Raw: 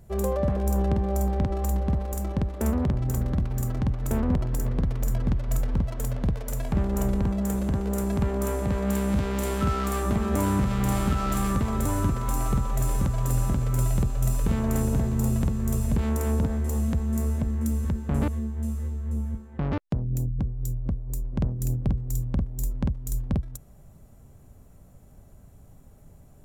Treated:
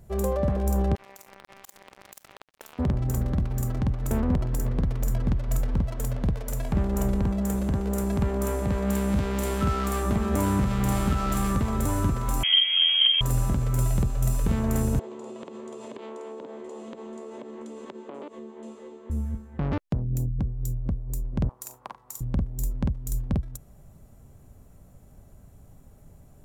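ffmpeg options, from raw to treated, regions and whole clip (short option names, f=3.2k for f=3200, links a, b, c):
-filter_complex "[0:a]asettb=1/sr,asplit=3[a][b][c];[a]atrim=end=0.954[d];[b]atrim=start=0.95:end=2.79,asetpts=PTS-STARTPTS,afade=t=in:d=0.004:c=qsin,afade=t=out:st=1.836:d=0.004:c=qsin,highpass=730,acompressor=threshold=-39dB:ratio=10:attack=3.2:release=140:knee=1:detection=peak,acrusher=bits=5:mix=0:aa=0.5[e];[c]atrim=start=2.786[f];[d][e]acrossfade=d=0.004:c1=hsin:c2=qsin[g];[g][f]acrossfade=d=0.004:c1=qsin:c2=hsin,asettb=1/sr,asplit=3[h][i][j];[h]atrim=end=12.434[k];[i]atrim=start=12.43:end=13.21,asetpts=PTS-STARTPTS,afade=t=in:d=0.004:c=qsin,afade=t=out:st=0.776:d=0.004:c=qsin,highpass=f=76:p=1,lowshelf=f=390:g=7,lowpass=f=2.8k:t=q:w=0.5098,lowpass=f=2.8k:t=q:w=0.6013,lowpass=f=2.8k:t=q:w=0.9,lowpass=f=2.8k:t=q:w=2.563,afreqshift=-3300[l];[j]atrim=start=13.206[m];[k][l]acrossfade=d=0.004:c1=hsin:c2=qsin[n];[n][m]acrossfade=d=0.004:c1=qsin:c2=hsin,asettb=1/sr,asplit=3[o][p][q];[o]atrim=end=14.994[r];[p]atrim=start=14.99:end=19.1,asetpts=PTS-STARTPTS,afade=t=in:d=0.004:c=qsin,afade=t=out:st=4.106:d=0.004:c=qsin,highpass=f=290:w=0.5412,highpass=f=290:w=1.3066,equalizer=f=380:t=q:w=4:g=9,equalizer=f=550:t=q:w=4:g=6,equalizer=f=990:t=q:w=4:g=6,equalizer=f=1.6k:t=q:w=4:g=-5,equalizer=f=3.2k:t=q:w=4:g=5,equalizer=f=5.5k:t=q:w=4:g=-9,lowpass=f=6.3k:w=0.5412,lowpass=f=6.3k:w=1.3066,acompressor=threshold=-35dB:ratio=10:attack=3.2:release=140:knee=1:detection=peak[s];[q]atrim=start=19.096[t];[r][s]acrossfade=d=0.004:c1=hsin:c2=qsin[u];[u][t]acrossfade=d=0.004:c1=qsin:c2=hsin,asettb=1/sr,asplit=3[v][w][x];[v]atrim=end=21.494[y];[w]atrim=start=21.49:end=22.21,asetpts=PTS-STARTPTS,afade=t=in:d=0.004:c=qsin,afade=t=out:st=0.716:d=0.004:c=qsin,highpass=f=1k:t=q:w=4.1,aeval=exprs='val(0)+0.000355*(sin(2*PI*50*n/s)+sin(2*PI*2*50*n/s)/2+sin(2*PI*3*50*n/s)/3+sin(2*PI*4*50*n/s)/4+sin(2*PI*5*50*n/s)/5)':c=same,asplit=2[z][aa];[aa]adelay=40,volume=-11dB[ab];[z][ab]amix=inputs=2:normalize=0,atrim=end_sample=31752[ac];[x]atrim=start=22.206[ad];[y][ac]acrossfade=d=0.004:c1=hsin:c2=qsin[ae];[ae][ad]acrossfade=d=0.004:c1=qsin:c2=hsin"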